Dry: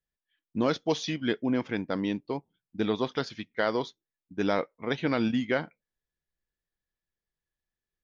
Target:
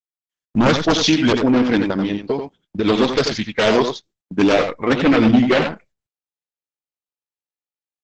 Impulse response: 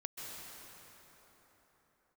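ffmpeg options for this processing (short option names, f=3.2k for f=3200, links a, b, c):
-filter_complex "[0:a]asettb=1/sr,asplit=3[a][b][c];[a]atrim=end=3.494[d];[b]atrim=start=3.49:end=4.39,asetpts=PTS-STARTPTS,afade=t=in:d=0.004:c=qsin,afade=t=out:st=0.896:d=0.004:c=qsin,highpass=55[e];[c]atrim=start=4.386[f];[d][e]acrossfade=d=0.004:c1=hsin:c2=qsin[g];[g][f]acrossfade=d=0.004:c1=qsin:c2=hsin,agate=range=-38dB:threshold=-54dB:ratio=16:detection=peak,asplit=3[h][i][j];[h]afade=t=out:st=1.82:d=0.02[k];[i]acompressor=threshold=-33dB:ratio=6,afade=t=in:st=1.82:d=0.02,afade=t=out:st=2.84:d=0.02[l];[j]afade=t=in:st=2.84:d=0.02[m];[k][l][m]amix=inputs=3:normalize=0,asettb=1/sr,asplit=3[n][o][p];[n]atrim=end=4.914[q];[o]atrim=start=4.91:end=5.52,asetpts=PTS-STARTPTS,afade=t=in:d=0.004:c=qsin,afade=t=out:st=0.606:d=0.004:c=qsin,lowpass=f=2.3k:p=1[r];[p]atrim=start=5.516[s];[q][r]acrossfade=d=0.004:c1=hsin:c2=qsin[t];[t][s]acrossfade=d=0.004:c1=qsin:c2=hsin,aphaser=in_gain=1:out_gain=1:delay=4.9:decay=0.39:speed=1.5:type=triangular,aeval=exprs='0.376*sin(PI/2*3.98*val(0)/0.376)':c=same,aecho=1:1:88:0.473" -ar 48000 -c:a libopus -b:a 10k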